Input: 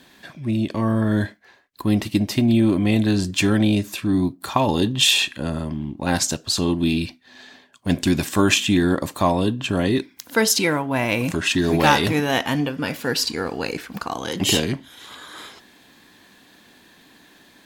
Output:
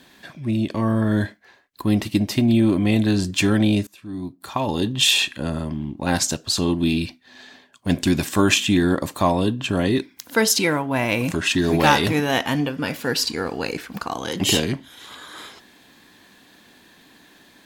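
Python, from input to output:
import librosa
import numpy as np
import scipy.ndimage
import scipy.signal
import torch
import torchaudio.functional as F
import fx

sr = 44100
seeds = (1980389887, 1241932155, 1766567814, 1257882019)

y = fx.edit(x, sr, fx.fade_in_from(start_s=3.87, length_s=1.3, floor_db=-23.5), tone=tone)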